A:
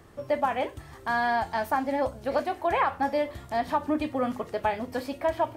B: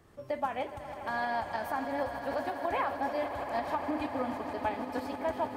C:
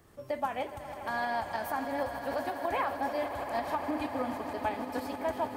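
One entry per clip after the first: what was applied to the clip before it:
echo that builds up and dies away 82 ms, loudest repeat 8, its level −15 dB; shaped tremolo saw up 6.4 Hz, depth 35%; level −5.5 dB
high-shelf EQ 7,800 Hz +9 dB

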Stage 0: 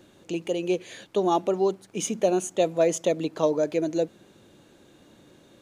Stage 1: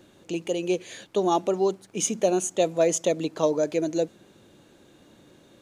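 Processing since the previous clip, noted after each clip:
dynamic equaliser 7,000 Hz, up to +5 dB, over −50 dBFS, Q 0.9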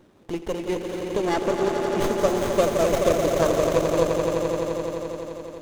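harmonic and percussive parts rebalanced harmonic −7 dB
echo that builds up and dies away 86 ms, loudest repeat 5, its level −7.5 dB
windowed peak hold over 17 samples
level +3 dB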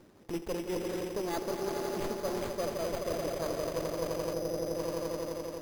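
gain on a spectral selection 0:04.34–0:04.78, 820–3,900 Hz −8 dB
reversed playback
downward compressor 10 to 1, threshold −28 dBFS, peak gain reduction 14 dB
reversed playback
decimation without filtering 8×
level −2.5 dB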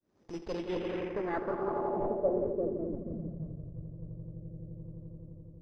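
fade in at the beginning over 0.60 s
high-shelf EQ 2,700 Hz −9.5 dB
low-pass filter sweep 6,100 Hz → 120 Hz, 0:00.27–0:03.68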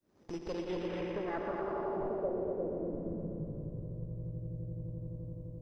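on a send: echo machine with several playback heads 120 ms, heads first and second, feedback 59%, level −9 dB
on the sum: downward compressor 2 to 1, threshold −42 dBFS, peak gain reduction 10.5 dB
level +3 dB

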